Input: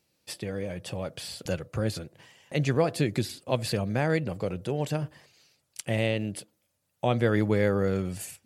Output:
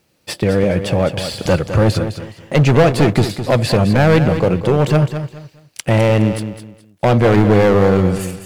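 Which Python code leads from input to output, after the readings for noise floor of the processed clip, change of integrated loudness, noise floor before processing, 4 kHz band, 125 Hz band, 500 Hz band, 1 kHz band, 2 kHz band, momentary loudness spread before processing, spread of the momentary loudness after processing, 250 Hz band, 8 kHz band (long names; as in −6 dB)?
−55 dBFS, +14.0 dB, −76 dBFS, +11.5 dB, +15.5 dB, +14.0 dB, +15.0 dB, +12.0 dB, 13 LU, 13 LU, +14.5 dB, +9.0 dB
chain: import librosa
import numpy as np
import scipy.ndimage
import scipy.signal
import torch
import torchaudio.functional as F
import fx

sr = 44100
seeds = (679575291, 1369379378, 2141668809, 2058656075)

p1 = fx.high_shelf(x, sr, hz=4000.0, db=-11.0)
p2 = fx.rider(p1, sr, range_db=4, speed_s=2.0)
p3 = p1 + (p2 * 10.0 ** (-1.5 / 20.0))
p4 = fx.leveller(p3, sr, passes=1)
p5 = fx.quant_dither(p4, sr, seeds[0], bits=12, dither='none')
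p6 = np.clip(p5, -10.0 ** (-15.5 / 20.0), 10.0 ** (-15.5 / 20.0))
p7 = fx.echo_feedback(p6, sr, ms=209, feedback_pct=26, wet_db=-10)
y = p7 * 10.0 ** (8.0 / 20.0)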